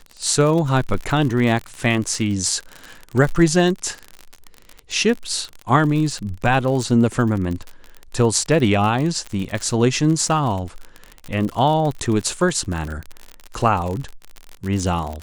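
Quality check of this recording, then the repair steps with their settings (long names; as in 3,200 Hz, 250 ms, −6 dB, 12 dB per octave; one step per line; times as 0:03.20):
surface crackle 49 per second −24 dBFS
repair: click removal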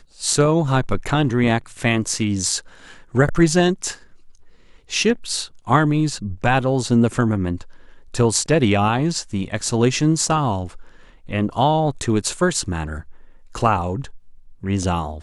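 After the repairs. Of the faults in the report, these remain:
none of them is left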